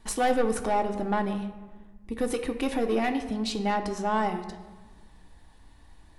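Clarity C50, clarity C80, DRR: 10.0 dB, 11.5 dB, 5.0 dB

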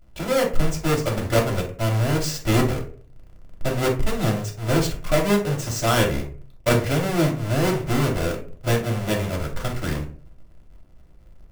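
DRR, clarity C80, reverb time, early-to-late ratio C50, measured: −1.0 dB, 15.0 dB, 0.45 s, 9.0 dB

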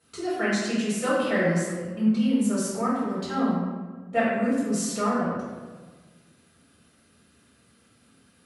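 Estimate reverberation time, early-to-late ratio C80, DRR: 1.4 s, 1.5 dB, −10.0 dB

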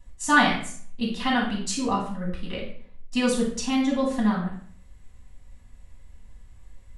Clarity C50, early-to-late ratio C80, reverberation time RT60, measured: 4.0 dB, 8.5 dB, 0.50 s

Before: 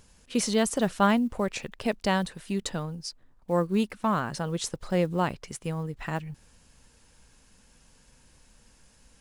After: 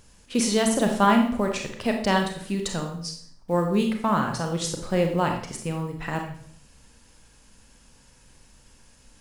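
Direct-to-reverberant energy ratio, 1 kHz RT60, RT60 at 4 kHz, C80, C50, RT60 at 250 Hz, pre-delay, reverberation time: 3.0 dB, 0.55 s, 0.50 s, 9.5 dB, 6.0 dB, 0.70 s, 29 ms, 0.60 s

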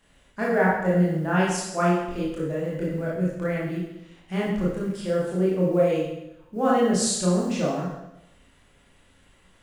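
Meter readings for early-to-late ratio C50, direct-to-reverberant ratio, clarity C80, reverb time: 0.5 dB, −6.0 dB, 4.0 dB, 0.85 s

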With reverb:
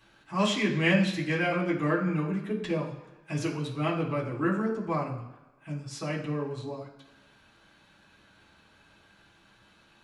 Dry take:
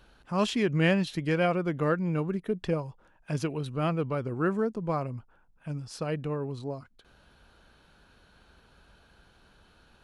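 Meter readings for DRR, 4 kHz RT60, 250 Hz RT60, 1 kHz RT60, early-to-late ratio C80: −6.5 dB, 1.0 s, 1.0 s, 1.1 s, 10.5 dB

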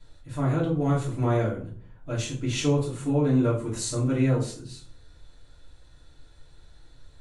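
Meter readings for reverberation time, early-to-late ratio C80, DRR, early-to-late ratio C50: 0.45 s, 12.0 dB, −8.0 dB, 8.0 dB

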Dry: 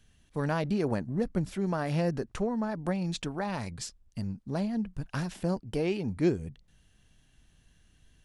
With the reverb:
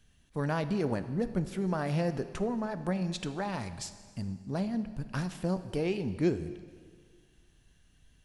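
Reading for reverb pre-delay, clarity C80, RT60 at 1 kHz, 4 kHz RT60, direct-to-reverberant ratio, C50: 4 ms, 13.5 dB, 1.9 s, 1.8 s, 11.0 dB, 12.5 dB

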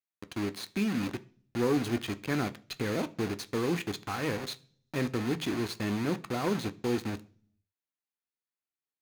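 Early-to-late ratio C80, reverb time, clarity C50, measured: 25.0 dB, 0.45 s, 20.5 dB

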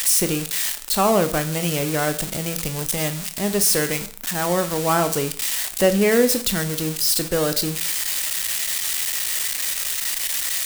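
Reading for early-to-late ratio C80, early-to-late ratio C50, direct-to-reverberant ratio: 18.0 dB, 14.0 dB, 9.0 dB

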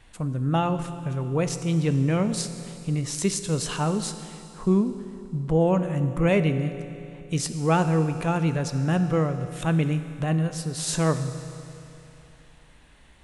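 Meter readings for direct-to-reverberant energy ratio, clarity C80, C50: 9.0 dB, 11.0 dB, 10.0 dB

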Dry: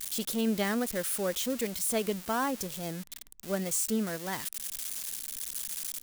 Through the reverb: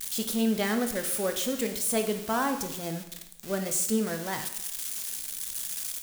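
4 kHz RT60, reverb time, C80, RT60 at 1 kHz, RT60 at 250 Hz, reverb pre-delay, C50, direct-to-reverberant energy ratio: 0.75 s, 0.80 s, 12.0 dB, 0.75 s, 0.80 s, 6 ms, 9.0 dB, 5.5 dB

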